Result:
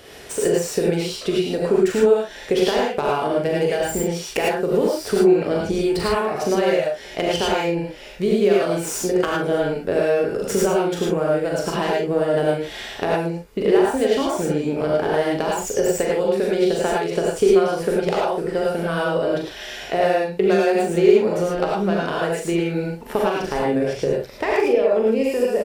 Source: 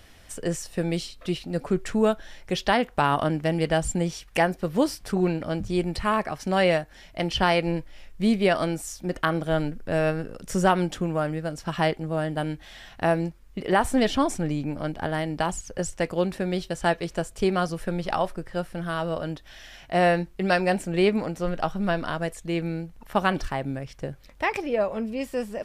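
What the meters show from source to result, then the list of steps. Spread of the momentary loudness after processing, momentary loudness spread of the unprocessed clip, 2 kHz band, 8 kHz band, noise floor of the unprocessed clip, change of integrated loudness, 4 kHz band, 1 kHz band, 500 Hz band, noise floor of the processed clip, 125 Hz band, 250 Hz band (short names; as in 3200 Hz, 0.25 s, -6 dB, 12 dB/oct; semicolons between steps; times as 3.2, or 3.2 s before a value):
7 LU, 10 LU, +2.0 dB, +7.0 dB, -50 dBFS, +6.0 dB, +4.0 dB, +2.0 dB, +8.5 dB, -37 dBFS, 0.0 dB, +4.0 dB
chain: tracing distortion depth 0.065 ms; HPF 190 Hz 6 dB/oct; doubler 41 ms -6 dB; compressor 10:1, threshold -31 dBFS, peak gain reduction 16.5 dB; bell 420 Hz +14.5 dB 0.44 oct; non-linear reverb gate 0.13 s rising, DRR -3 dB; gain +7 dB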